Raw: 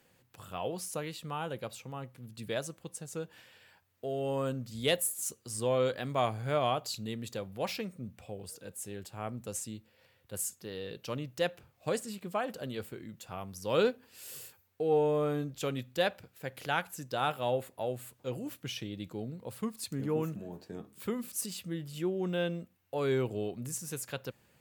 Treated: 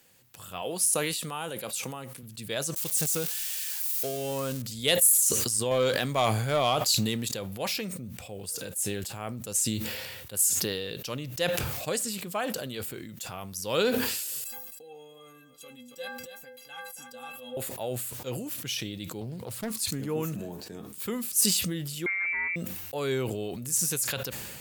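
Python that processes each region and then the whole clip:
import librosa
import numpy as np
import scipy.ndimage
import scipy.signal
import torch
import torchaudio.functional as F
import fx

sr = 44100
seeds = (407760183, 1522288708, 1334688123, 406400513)

y = fx.chain(x, sr, fx.highpass(hz=170.0, slope=12),
    fx.peak_eq(hz=9700.0, db=8.0, octaves=0.47), at=(0.62, 2.23))
y = fx.chain(y, sr, fx.crossing_spikes(level_db=-33.0),
    fx.high_shelf(hz=8500.0, db=-3.5), at=(2.76, 4.62))
y = fx.chain(y, sr, fx.highpass(hz=63.0, slope=12),
    fx.leveller(passes=1), at=(5.71, 7.34))
y = fx.chain(y, sr, fx.stiff_resonator(f0_hz=240.0, decay_s=0.36, stiffness=0.03),
    fx.echo_single(ms=276, db=-16.0), at=(14.44, 17.57))
y = fx.chain(y, sr, fx.highpass(hz=48.0, slope=24),
    fx.peak_eq(hz=110.0, db=5.5, octaves=0.71),
    fx.doppler_dist(depth_ms=0.6), at=(19.21, 19.88))
y = fx.chain(y, sr, fx.overload_stage(gain_db=30.5),
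    fx.freq_invert(carrier_hz=2500), at=(22.06, 22.56))
y = fx.high_shelf(y, sr, hz=3000.0, db=12.0)
y = fx.sustainer(y, sr, db_per_s=30.0)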